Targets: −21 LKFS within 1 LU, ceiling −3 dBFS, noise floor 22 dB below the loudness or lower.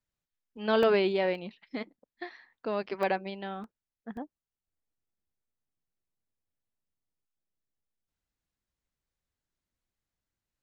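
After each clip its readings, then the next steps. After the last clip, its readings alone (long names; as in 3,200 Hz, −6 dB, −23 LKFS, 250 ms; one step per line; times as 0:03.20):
number of dropouts 5; longest dropout 1.4 ms; integrated loudness −30.0 LKFS; sample peak −14.5 dBFS; target loudness −21.0 LKFS
→ repair the gap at 0:00.83/0:01.35/0:03.03/0:03.64/0:04.17, 1.4 ms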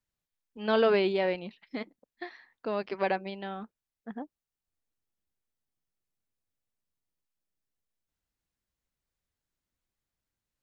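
number of dropouts 0; integrated loudness −30.0 LKFS; sample peak −14.5 dBFS; target loudness −21.0 LKFS
→ level +9 dB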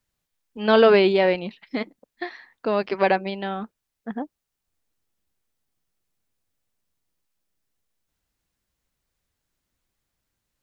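integrated loudness −21.0 LKFS; sample peak −5.5 dBFS; background noise floor −82 dBFS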